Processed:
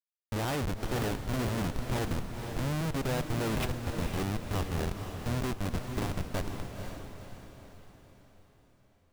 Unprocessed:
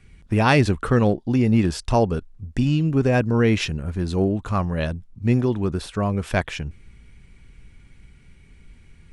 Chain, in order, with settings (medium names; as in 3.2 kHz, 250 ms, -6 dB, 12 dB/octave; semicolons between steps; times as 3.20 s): Schmitt trigger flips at -21 dBFS; echo that smears into a reverb 500 ms, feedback 47%, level -6 dB; trim -8.5 dB